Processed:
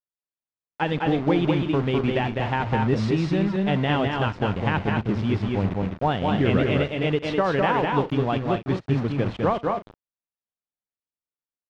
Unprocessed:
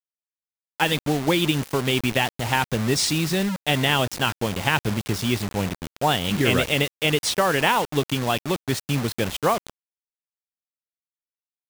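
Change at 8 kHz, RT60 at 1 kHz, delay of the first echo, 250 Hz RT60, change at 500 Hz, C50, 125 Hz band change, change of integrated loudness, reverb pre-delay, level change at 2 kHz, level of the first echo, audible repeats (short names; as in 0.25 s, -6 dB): under -20 dB, none, 63 ms, none, +1.0 dB, none, +2.0 dB, -1.0 dB, none, -5.0 dB, -20.0 dB, 3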